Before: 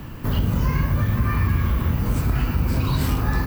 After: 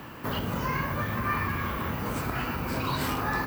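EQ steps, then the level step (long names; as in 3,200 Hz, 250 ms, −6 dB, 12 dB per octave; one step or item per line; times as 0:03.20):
high-pass filter 930 Hz 6 dB per octave
high-shelf EQ 2,200 Hz −10 dB
+6.0 dB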